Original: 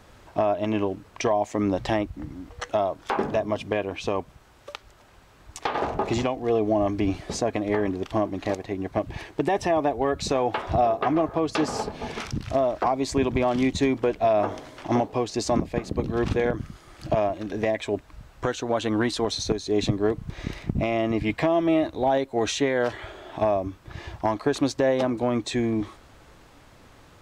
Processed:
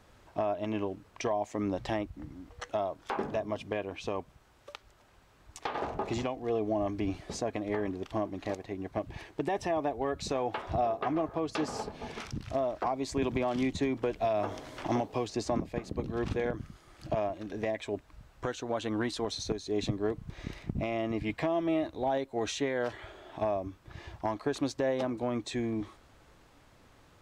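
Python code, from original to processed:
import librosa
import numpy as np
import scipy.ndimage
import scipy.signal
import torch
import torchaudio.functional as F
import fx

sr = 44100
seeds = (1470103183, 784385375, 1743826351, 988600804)

y = fx.band_squash(x, sr, depth_pct=70, at=(13.22, 15.71))
y = y * 10.0 ** (-8.0 / 20.0)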